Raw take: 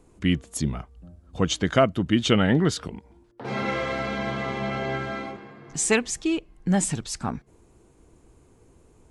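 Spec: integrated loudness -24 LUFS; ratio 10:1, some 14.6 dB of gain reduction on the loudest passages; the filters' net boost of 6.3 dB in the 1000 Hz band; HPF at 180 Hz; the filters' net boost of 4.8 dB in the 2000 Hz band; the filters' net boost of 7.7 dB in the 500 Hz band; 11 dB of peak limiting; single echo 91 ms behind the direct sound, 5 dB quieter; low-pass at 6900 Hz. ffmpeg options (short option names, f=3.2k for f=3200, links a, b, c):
-af "highpass=180,lowpass=6.9k,equalizer=f=500:t=o:g=8.5,equalizer=f=1k:t=o:g=4.5,equalizer=f=2k:t=o:g=4,acompressor=threshold=-22dB:ratio=10,alimiter=limit=-19dB:level=0:latency=1,aecho=1:1:91:0.562,volume=5.5dB"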